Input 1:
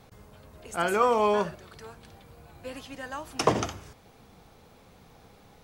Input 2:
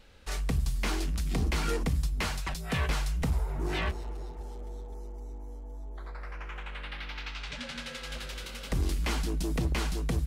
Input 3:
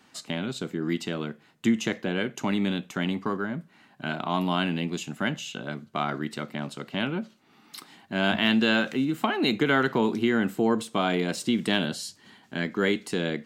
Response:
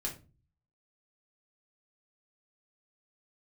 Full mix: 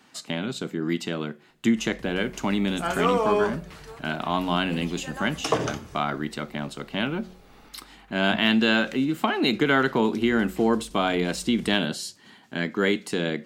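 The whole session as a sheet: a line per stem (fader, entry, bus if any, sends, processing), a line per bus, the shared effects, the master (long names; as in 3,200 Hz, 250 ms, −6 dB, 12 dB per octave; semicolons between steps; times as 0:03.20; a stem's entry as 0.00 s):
−4.0 dB, 2.05 s, send −3.5 dB, no processing
−15.5 dB, 1.50 s, no send, no processing
+2.0 dB, 0.00 s, no send, no processing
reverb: on, RT60 0.30 s, pre-delay 3 ms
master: parametric band 67 Hz −3.5 dB 1.7 octaves; hum removal 183.9 Hz, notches 3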